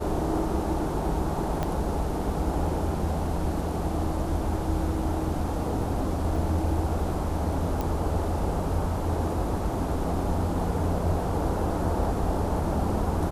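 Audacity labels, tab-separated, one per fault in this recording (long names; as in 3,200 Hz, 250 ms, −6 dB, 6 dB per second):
1.630000	1.630000	click −15 dBFS
6.360000	6.360000	drop-out 2.2 ms
7.810000	7.810000	click −16 dBFS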